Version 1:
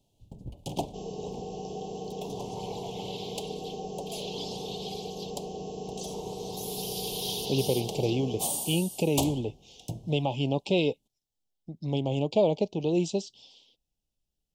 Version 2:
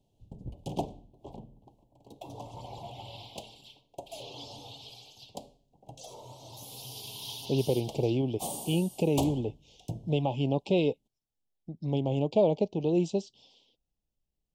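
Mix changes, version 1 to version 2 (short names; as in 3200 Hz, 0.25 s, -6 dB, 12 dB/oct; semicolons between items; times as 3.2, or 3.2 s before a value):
second sound: muted; master: add high shelf 2200 Hz -8.5 dB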